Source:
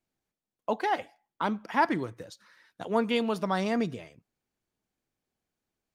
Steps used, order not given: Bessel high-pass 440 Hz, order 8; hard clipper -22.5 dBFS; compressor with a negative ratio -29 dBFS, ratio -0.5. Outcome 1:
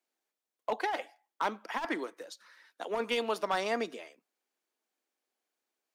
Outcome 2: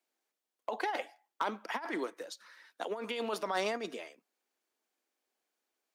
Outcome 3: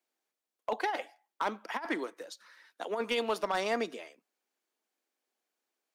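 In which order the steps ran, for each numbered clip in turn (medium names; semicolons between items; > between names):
Bessel high-pass > hard clipper > compressor with a negative ratio; compressor with a negative ratio > Bessel high-pass > hard clipper; Bessel high-pass > compressor with a negative ratio > hard clipper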